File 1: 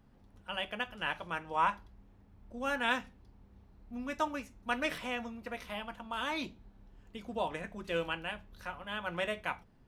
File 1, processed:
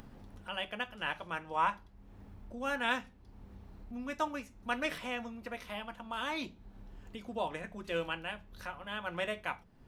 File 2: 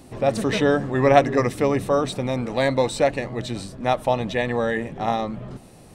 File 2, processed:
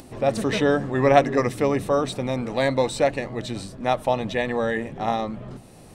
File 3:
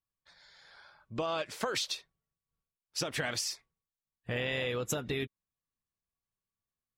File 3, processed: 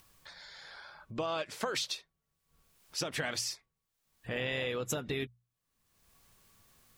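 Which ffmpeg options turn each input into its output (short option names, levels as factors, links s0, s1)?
-af "bandreject=f=60:t=h:w=6,bandreject=f=120:t=h:w=6,bandreject=f=180:t=h:w=6,acompressor=mode=upward:threshold=0.01:ratio=2.5,volume=0.891"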